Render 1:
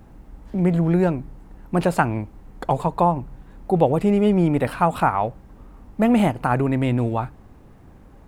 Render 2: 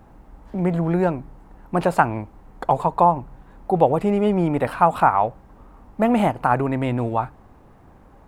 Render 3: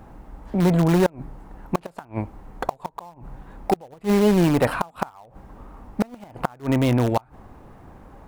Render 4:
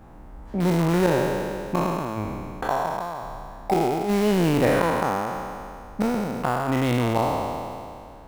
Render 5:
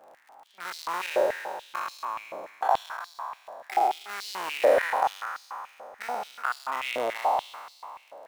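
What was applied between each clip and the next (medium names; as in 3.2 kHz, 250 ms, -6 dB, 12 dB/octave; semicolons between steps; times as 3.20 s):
peaking EQ 920 Hz +7.5 dB 1.9 oct; trim -3.5 dB
in parallel at -11.5 dB: integer overflow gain 16 dB; on the sum: inverted gate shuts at -9 dBFS, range -30 dB; trim +2 dB
spectral sustain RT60 2.39 s; trim -4.5 dB
crackle 48 per s -39 dBFS; step-sequenced high-pass 6.9 Hz 580–4400 Hz; trim -6.5 dB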